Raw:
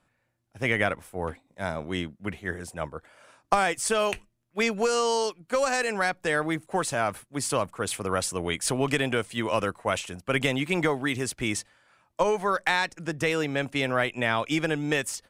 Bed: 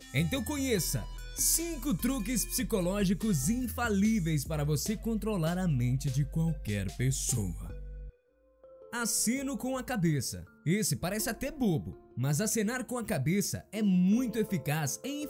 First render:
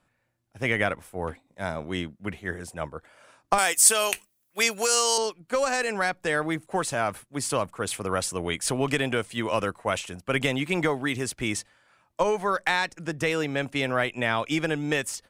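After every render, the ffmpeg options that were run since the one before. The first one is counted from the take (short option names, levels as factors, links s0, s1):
-filter_complex "[0:a]asettb=1/sr,asplit=3[s0][s1][s2];[s0]atrim=end=3.584[s3];[s1]atrim=start=3.58:end=5.18,asetpts=PTS-STARTPTS,afade=t=in:d=0.004:c=qsin,afade=t=out:st=1.596:d=0.004:c=qsin,aemphasis=mode=production:type=riaa[s4];[s2]atrim=start=5.176[s5];[s3][s4]acrossfade=d=0.004:c1=hsin:c2=qsin[s6];[s6][s5]acrossfade=d=0.004:c1=qsin:c2=hsin"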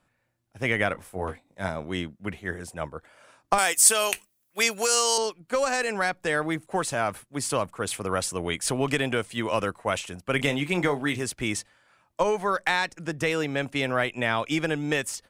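-filter_complex "[0:a]asettb=1/sr,asplit=3[s0][s1][s2];[s0]atrim=end=0.934[s3];[s1]atrim=start=0.93:end=1.69,asetpts=PTS-STARTPTS,afade=t=in:d=0.004:c=qsin,afade=t=out:st=0.756:d=0.004:c=qsin,asplit=2[s4][s5];[s5]adelay=21,volume=0.501[s6];[s4][s6]amix=inputs=2:normalize=0,atrim=end_sample=33516[s7];[s2]atrim=start=1.686[s8];[s3][s7]acrossfade=d=0.004:c1=hsin:c2=qsin[s9];[s9][s8]acrossfade=d=0.004:c1=qsin:c2=hsin,asettb=1/sr,asplit=3[s10][s11][s12];[s10]atrim=end=10.364[s13];[s11]atrim=start=10.36:end=11.23,asetpts=PTS-STARTPTS,afade=t=in:d=0.004:c=qsin,afade=t=out:st=0.866:d=0.004:c=qsin,asplit=2[s14][s15];[s15]adelay=28,volume=0.282[s16];[s14][s16]amix=inputs=2:normalize=0,atrim=end_sample=38367[s17];[s12]atrim=start=11.226[s18];[s13][s17]acrossfade=d=0.004:c1=hsin:c2=qsin[s19];[s19][s18]acrossfade=d=0.004:c1=qsin:c2=hsin"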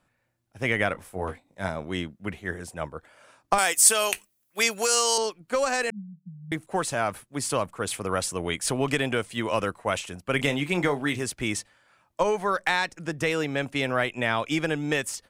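-filter_complex "[0:a]asettb=1/sr,asplit=3[s0][s1][s2];[s0]atrim=end=5.904[s3];[s1]atrim=start=5.9:end=6.52,asetpts=PTS-STARTPTS,afade=t=in:d=0.004:c=qsin,afade=t=out:st=0.616:d=0.004:c=qsin,asuperpass=centerf=180:order=12:qfactor=2.9[s4];[s2]atrim=start=6.516[s5];[s3][s4]acrossfade=d=0.004:c1=hsin:c2=qsin[s6];[s6][s5]acrossfade=d=0.004:c1=qsin:c2=hsin"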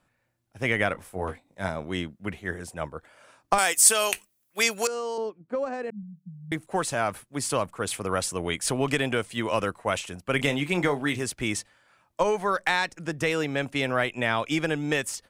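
-filter_complex "[0:a]asettb=1/sr,asplit=3[s0][s1][s2];[s0]atrim=end=4.874[s3];[s1]atrim=start=4.87:end=6.03,asetpts=PTS-STARTPTS,afade=t=in:d=0.004:c=qsin,afade=t=out:st=1.156:d=0.004:c=qsin,bandpass=f=250:t=q:w=0.63[s4];[s2]atrim=start=6.026[s5];[s3][s4]acrossfade=d=0.004:c1=hsin:c2=qsin[s6];[s6][s5]acrossfade=d=0.004:c1=qsin:c2=hsin"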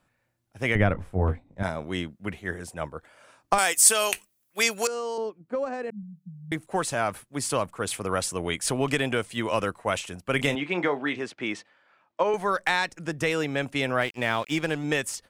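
-filter_complex "[0:a]asettb=1/sr,asplit=3[s0][s1][s2];[s0]atrim=end=0.754[s3];[s1]atrim=start=0.75:end=1.63,asetpts=PTS-STARTPTS,afade=t=in:d=0.004:c=qsin,afade=t=out:st=0.876:d=0.004:c=qsin,aemphasis=mode=reproduction:type=riaa[s4];[s2]atrim=start=1.626[s5];[s3][s4]acrossfade=d=0.004:c1=hsin:c2=qsin[s6];[s6][s5]acrossfade=d=0.004:c1=qsin:c2=hsin,asettb=1/sr,asplit=3[s7][s8][s9];[s7]atrim=end=10.554[s10];[s8]atrim=start=10.55:end=12.34,asetpts=PTS-STARTPTS,afade=t=in:d=0.004:c=qsin,afade=t=out:st=1.786:d=0.004:c=qsin,highpass=240,lowpass=3300[s11];[s9]atrim=start=12.336[s12];[s10][s11]acrossfade=d=0.004:c1=hsin:c2=qsin[s13];[s13][s12]acrossfade=d=0.004:c1=qsin:c2=hsin,asettb=1/sr,asplit=3[s14][s15][s16];[s14]atrim=end=14.014[s17];[s15]atrim=start=14.01:end=14.84,asetpts=PTS-STARTPTS,afade=t=in:d=0.004:c=qsin,afade=t=out:st=0.826:d=0.004:c=qsin,aeval=exprs='sgn(val(0))*max(abs(val(0))-0.0075,0)':c=same[s18];[s16]atrim=start=14.836[s19];[s17][s18]acrossfade=d=0.004:c1=hsin:c2=qsin[s20];[s20][s19]acrossfade=d=0.004:c1=qsin:c2=hsin"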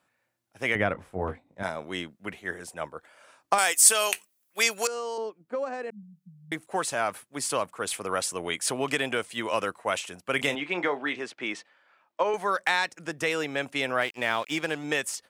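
-af "highpass=f=400:p=1"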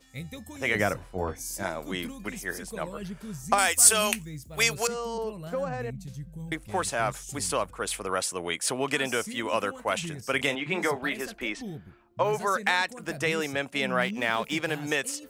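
-filter_complex "[1:a]volume=0.335[s0];[0:a][s0]amix=inputs=2:normalize=0"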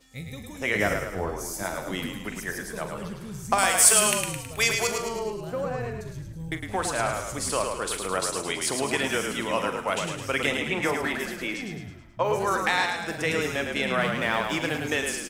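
-filter_complex "[0:a]asplit=2[s0][s1];[s1]adelay=43,volume=0.266[s2];[s0][s2]amix=inputs=2:normalize=0,asplit=7[s3][s4][s5][s6][s7][s8][s9];[s4]adelay=107,afreqshift=-34,volume=0.562[s10];[s5]adelay=214,afreqshift=-68,volume=0.288[s11];[s6]adelay=321,afreqshift=-102,volume=0.146[s12];[s7]adelay=428,afreqshift=-136,volume=0.075[s13];[s8]adelay=535,afreqshift=-170,volume=0.038[s14];[s9]adelay=642,afreqshift=-204,volume=0.0195[s15];[s3][s10][s11][s12][s13][s14][s15]amix=inputs=7:normalize=0"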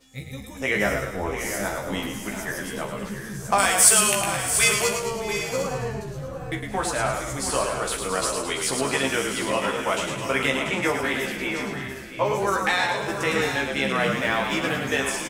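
-filter_complex "[0:a]asplit=2[s0][s1];[s1]adelay=15,volume=0.708[s2];[s0][s2]amix=inputs=2:normalize=0,asplit=2[s3][s4];[s4]aecho=0:1:608|689|750:0.112|0.316|0.251[s5];[s3][s5]amix=inputs=2:normalize=0"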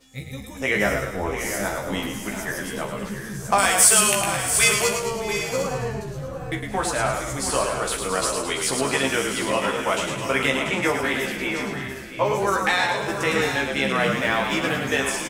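-af "volume=1.19,alimiter=limit=0.708:level=0:latency=1"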